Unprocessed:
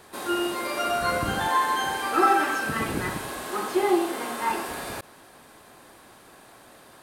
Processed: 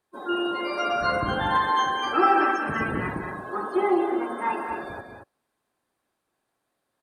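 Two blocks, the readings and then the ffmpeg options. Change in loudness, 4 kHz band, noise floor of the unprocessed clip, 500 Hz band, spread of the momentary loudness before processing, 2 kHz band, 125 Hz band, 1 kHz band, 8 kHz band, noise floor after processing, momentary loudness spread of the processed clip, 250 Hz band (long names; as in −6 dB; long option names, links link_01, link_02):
+0.5 dB, −1.0 dB, −51 dBFS, +0.5 dB, 11 LU, 0.0 dB, +1.0 dB, +1.0 dB, below −10 dB, −79 dBFS, 12 LU, +1.0 dB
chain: -filter_complex "[0:a]afftdn=noise_reduction=29:noise_floor=-33,asplit=2[link_01][link_02];[link_02]aecho=0:1:186.6|227.4:0.355|0.398[link_03];[link_01][link_03]amix=inputs=2:normalize=0"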